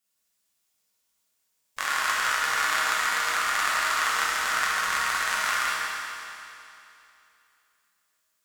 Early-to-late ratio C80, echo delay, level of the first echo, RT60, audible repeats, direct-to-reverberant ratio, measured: -1.5 dB, none, none, 2.8 s, none, -7.0 dB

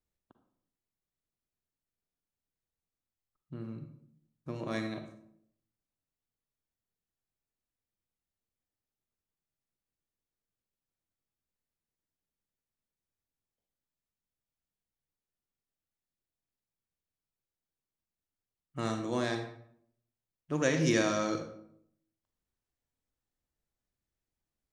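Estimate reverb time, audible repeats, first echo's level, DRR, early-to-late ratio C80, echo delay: 0.70 s, none, none, 6.0 dB, 11.0 dB, none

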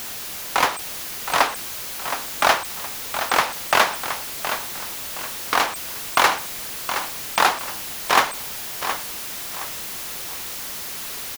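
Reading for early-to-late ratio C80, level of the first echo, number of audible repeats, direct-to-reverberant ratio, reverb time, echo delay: none, -9.5 dB, 3, none, none, 0.719 s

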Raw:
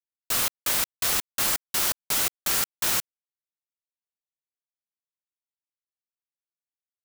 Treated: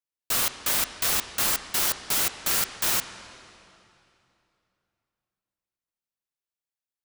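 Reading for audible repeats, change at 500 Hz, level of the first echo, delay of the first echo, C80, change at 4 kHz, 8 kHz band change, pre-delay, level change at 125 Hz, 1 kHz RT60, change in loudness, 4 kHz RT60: none, +0.5 dB, none, none, 13.0 dB, +0.5 dB, 0.0 dB, 9 ms, +0.5 dB, 2.7 s, 0.0 dB, 2.4 s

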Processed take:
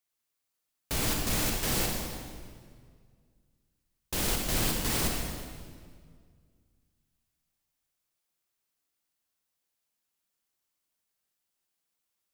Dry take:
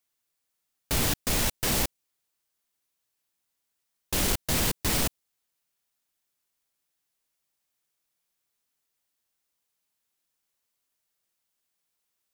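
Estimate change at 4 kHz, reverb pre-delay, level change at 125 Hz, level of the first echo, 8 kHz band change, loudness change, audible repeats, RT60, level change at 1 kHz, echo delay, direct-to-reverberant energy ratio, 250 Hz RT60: -2.5 dB, 37 ms, -1.5 dB, none, -2.5 dB, -3.0 dB, none, 1.9 s, -2.0 dB, none, 0.5 dB, 2.2 s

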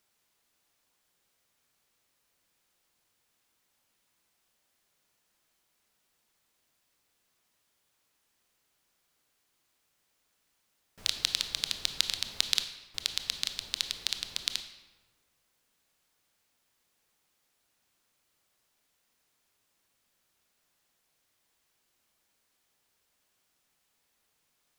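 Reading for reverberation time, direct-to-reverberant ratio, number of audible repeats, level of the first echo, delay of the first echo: 1.4 s, 8.0 dB, none, none, none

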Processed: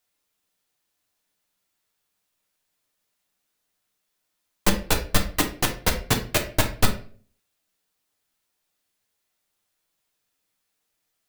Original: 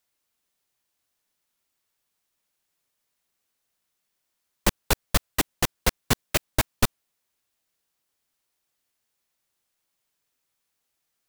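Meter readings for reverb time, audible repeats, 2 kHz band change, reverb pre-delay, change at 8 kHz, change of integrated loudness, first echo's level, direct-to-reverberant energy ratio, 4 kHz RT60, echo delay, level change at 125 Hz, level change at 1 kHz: 0.45 s, none, +2.0 dB, 7 ms, +1.5 dB, +2.0 dB, none, 2.0 dB, 0.35 s, none, +2.5 dB, +2.0 dB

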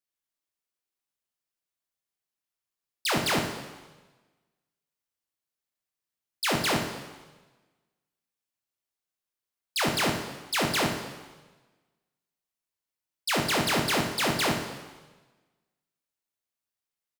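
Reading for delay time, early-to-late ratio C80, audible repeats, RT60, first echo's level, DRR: 65 ms, 7.5 dB, 1, 1.3 s, -9.0 dB, 2.0 dB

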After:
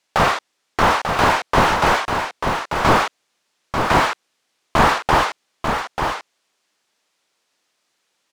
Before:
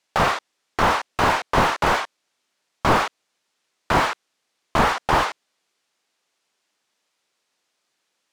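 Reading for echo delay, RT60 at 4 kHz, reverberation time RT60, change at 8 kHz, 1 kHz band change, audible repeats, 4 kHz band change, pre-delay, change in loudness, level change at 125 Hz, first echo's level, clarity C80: 0.891 s, none, none, +4.0 dB, +4.0 dB, 1, +4.0 dB, none, +2.5 dB, +4.0 dB, -6.0 dB, none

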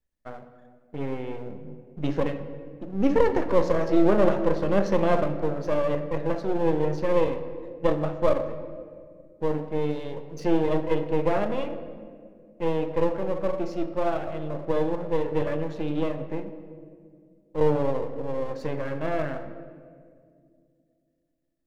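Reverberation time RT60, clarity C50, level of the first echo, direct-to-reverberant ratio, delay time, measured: 2.2 s, 10.5 dB, none, 9.0 dB, none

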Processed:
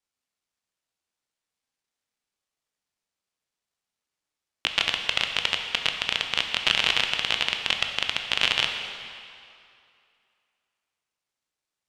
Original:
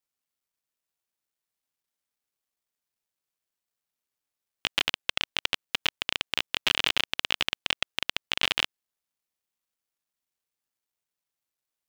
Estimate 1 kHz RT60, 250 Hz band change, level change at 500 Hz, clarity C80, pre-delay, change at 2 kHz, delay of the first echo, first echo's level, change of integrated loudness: 2.6 s, +1.0 dB, +3.0 dB, 6.5 dB, 15 ms, +4.0 dB, none, none, +3.5 dB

